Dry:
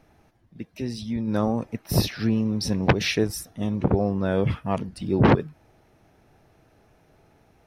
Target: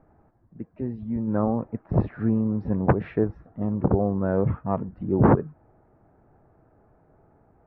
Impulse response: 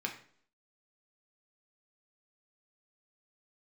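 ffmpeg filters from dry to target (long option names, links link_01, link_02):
-af "lowpass=frequency=1400:width=0.5412,lowpass=frequency=1400:width=1.3066"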